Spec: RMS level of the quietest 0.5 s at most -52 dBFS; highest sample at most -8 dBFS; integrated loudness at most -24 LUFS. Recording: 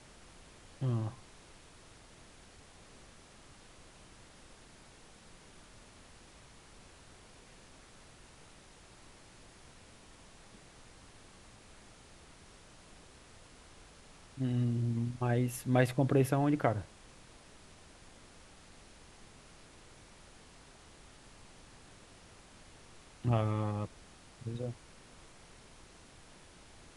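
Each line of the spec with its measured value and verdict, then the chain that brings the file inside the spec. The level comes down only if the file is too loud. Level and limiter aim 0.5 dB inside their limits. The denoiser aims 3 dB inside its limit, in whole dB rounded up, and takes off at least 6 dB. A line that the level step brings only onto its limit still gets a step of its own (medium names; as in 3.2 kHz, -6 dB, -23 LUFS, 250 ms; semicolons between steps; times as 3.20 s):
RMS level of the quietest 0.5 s -57 dBFS: pass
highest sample -13.0 dBFS: pass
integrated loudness -33.0 LUFS: pass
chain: none needed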